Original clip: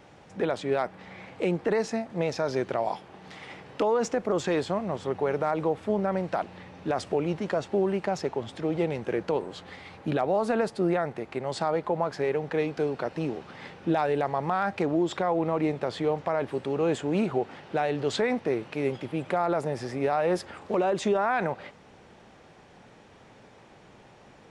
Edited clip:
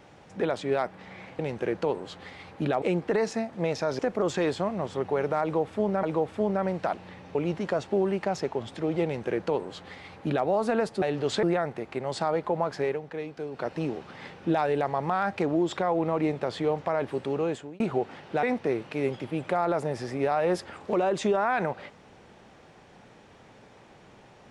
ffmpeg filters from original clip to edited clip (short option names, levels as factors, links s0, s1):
-filter_complex "[0:a]asplit=12[s0][s1][s2][s3][s4][s5][s6][s7][s8][s9][s10][s11];[s0]atrim=end=1.392[s12];[s1]atrim=start=8.848:end=10.282[s13];[s2]atrim=start=1.388:end=2.562[s14];[s3]atrim=start=4.088:end=6.132[s15];[s4]atrim=start=5.518:end=6.842[s16];[s5]atrim=start=7.158:end=10.832[s17];[s6]atrim=start=17.828:end=18.242[s18];[s7]atrim=start=10.828:end=12.41,asetpts=PTS-STARTPTS,afade=t=out:st=1.382:d=0.2:c=qsin:silence=0.398107[s19];[s8]atrim=start=12.41:end=12.91,asetpts=PTS-STARTPTS,volume=0.398[s20];[s9]atrim=start=12.91:end=17.2,asetpts=PTS-STARTPTS,afade=t=in:d=0.2:c=qsin:silence=0.398107,afade=t=out:st=3.82:d=0.47[s21];[s10]atrim=start=17.2:end=17.832,asetpts=PTS-STARTPTS,afade=t=in:d=0.004:c=hsin[s22];[s11]atrim=start=18.238[s23];[s12][s13]acrossfade=d=0.004:c1=hsin:c2=hsin[s24];[s24][s14]acrossfade=d=0.004:c1=hsin:c2=hsin[s25];[s25][s15]acrossfade=d=0.004:c1=hsin:c2=hsin[s26];[s26][s16]acrossfade=d=0.004:c1=hsin:c2=hsin[s27];[s27][s17]acrossfade=d=0.004:c1=hsin:c2=hsin[s28];[s28][s18]acrossfade=d=0.004:c1=hsin:c2=hsin[s29];[s19][s20][s21][s22]concat=n=4:v=0:a=1[s30];[s29][s30]acrossfade=d=0.004:c1=hsin:c2=hsin[s31];[s31][s23]acrossfade=d=0.004:c1=hsin:c2=hsin"